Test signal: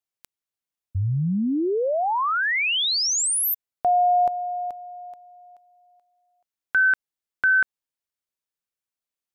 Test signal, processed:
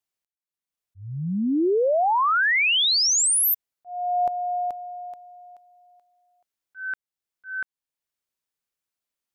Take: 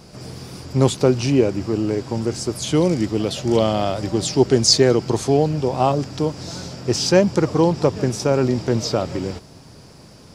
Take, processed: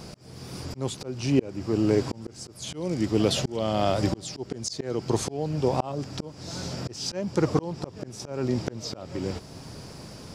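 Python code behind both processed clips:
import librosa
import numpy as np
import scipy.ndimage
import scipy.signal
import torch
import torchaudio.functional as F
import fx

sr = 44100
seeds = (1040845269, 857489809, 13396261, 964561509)

y = fx.auto_swell(x, sr, attack_ms=701.0)
y = y * librosa.db_to_amplitude(2.5)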